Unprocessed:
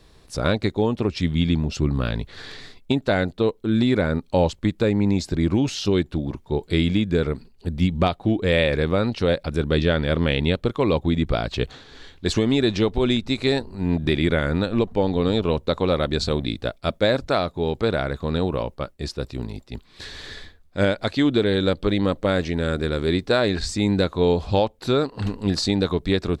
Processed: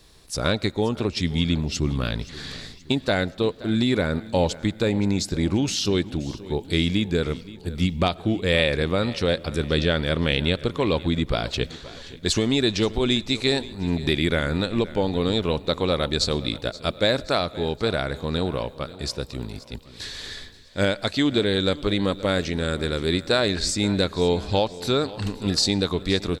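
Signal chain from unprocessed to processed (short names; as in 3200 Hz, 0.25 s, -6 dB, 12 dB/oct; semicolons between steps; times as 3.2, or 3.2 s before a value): high shelf 3300 Hz +10.5 dB; feedback echo 0.525 s, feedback 47%, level -18 dB; on a send at -24 dB: reverb RT60 1.1 s, pre-delay 60 ms; on the sum: gain -2.5 dB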